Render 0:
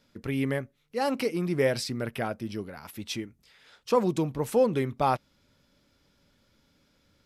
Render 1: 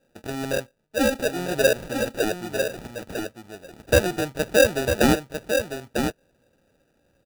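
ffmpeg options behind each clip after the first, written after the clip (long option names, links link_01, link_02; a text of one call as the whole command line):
ffmpeg -i in.wav -af "firequalizer=gain_entry='entry(200,0);entry(610,14);entry(2200,1)':delay=0.05:min_phase=1,acrusher=samples=41:mix=1:aa=0.000001,aecho=1:1:949:0.473,volume=-4.5dB" out.wav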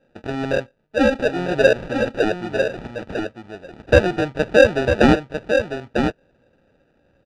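ffmpeg -i in.wav -af "lowpass=3100,volume=5dB" out.wav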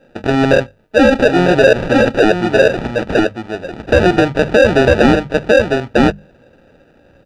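ffmpeg -i in.wav -af "bandreject=frequency=50:width_type=h:width=6,bandreject=frequency=100:width_type=h:width=6,bandreject=frequency=150:width_type=h:width=6,bandreject=frequency=200:width_type=h:width=6,alimiter=level_in=13.5dB:limit=-1dB:release=50:level=0:latency=1,volume=-1dB" out.wav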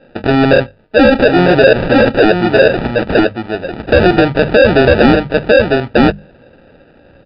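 ffmpeg -i in.wav -af "acrusher=bits=9:mode=log:mix=0:aa=0.000001,acontrast=37,aresample=11025,aresample=44100,volume=-1dB" out.wav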